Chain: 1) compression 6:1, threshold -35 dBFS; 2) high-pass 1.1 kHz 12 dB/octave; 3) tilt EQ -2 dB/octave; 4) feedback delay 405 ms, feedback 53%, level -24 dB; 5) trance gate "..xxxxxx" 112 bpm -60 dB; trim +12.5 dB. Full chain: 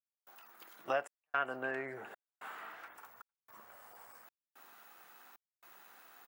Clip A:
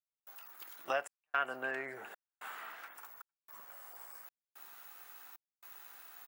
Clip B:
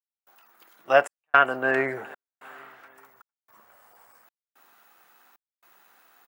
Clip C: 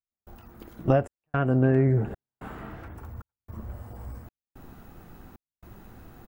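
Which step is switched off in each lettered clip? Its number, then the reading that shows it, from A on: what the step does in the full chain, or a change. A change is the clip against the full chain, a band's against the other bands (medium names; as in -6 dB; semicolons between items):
3, 8 kHz band +6.5 dB; 1, mean gain reduction 8.0 dB; 2, 125 Hz band +27.5 dB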